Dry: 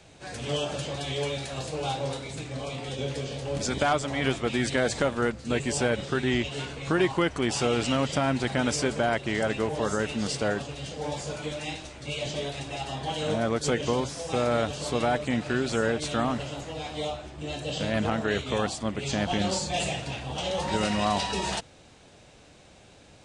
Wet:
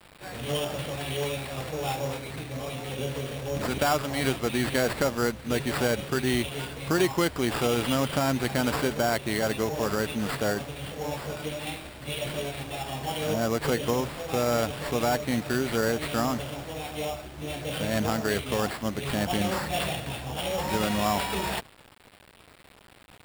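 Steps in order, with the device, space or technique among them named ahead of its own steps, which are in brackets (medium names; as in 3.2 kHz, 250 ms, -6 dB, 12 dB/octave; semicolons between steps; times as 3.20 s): early 8-bit sampler (sample-rate reducer 6.2 kHz, jitter 0%; bit crusher 8-bit)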